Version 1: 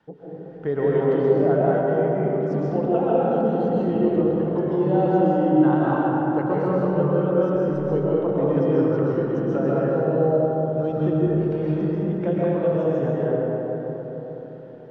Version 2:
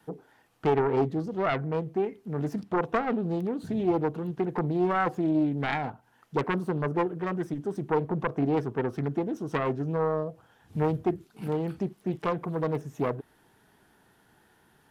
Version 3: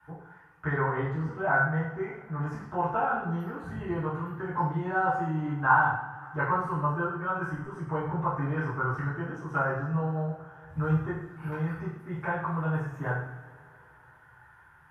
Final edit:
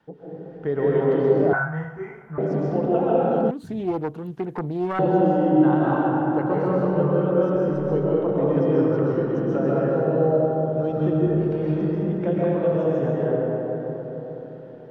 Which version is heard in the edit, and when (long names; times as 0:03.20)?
1
0:01.53–0:02.38: punch in from 3
0:03.51–0:04.99: punch in from 2